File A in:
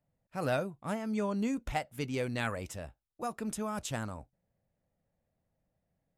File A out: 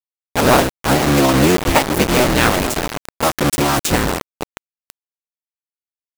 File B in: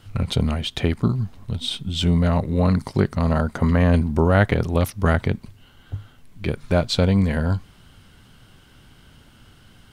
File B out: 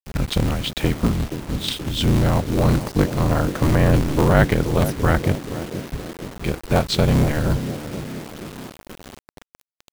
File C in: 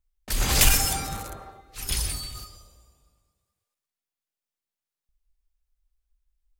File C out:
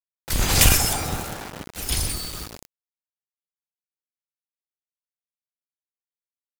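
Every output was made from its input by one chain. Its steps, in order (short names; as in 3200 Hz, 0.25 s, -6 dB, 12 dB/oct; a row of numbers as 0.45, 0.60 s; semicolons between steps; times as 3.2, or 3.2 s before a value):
cycle switcher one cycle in 3, inverted; narrowing echo 0.476 s, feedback 65%, band-pass 300 Hz, level -7.5 dB; requantised 6-bit, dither none; normalise peaks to -2 dBFS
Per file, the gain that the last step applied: +18.5, +1.0, +2.5 dB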